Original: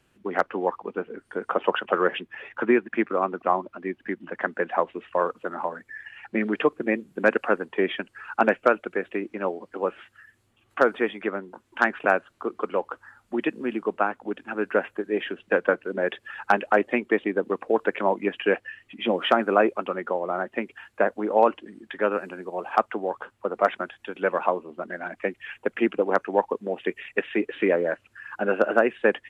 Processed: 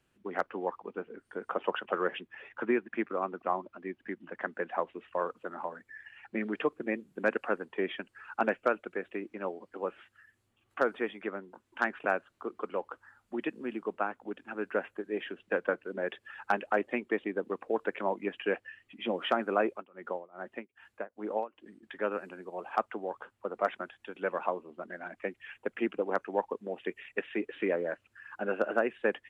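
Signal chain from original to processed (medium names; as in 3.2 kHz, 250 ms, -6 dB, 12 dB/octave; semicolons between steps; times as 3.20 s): 19.70–21.83 s: tremolo 2.5 Hz, depth 95%; trim -8.5 dB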